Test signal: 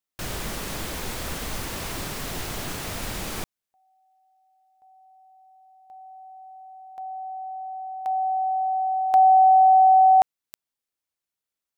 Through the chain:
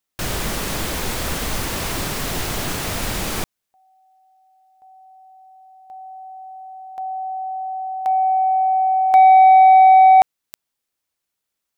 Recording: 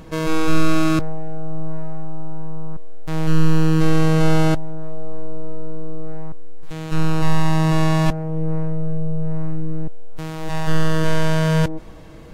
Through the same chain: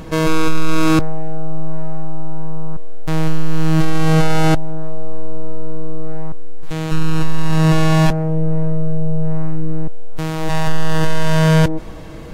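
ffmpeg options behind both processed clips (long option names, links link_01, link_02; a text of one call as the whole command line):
ffmpeg -i in.wav -filter_complex "[0:a]asplit=2[link_01][link_02];[link_02]acontrast=77,volume=-1dB[link_03];[link_01][link_03]amix=inputs=2:normalize=0,asoftclip=type=tanh:threshold=-1.5dB,volume=-2dB" out.wav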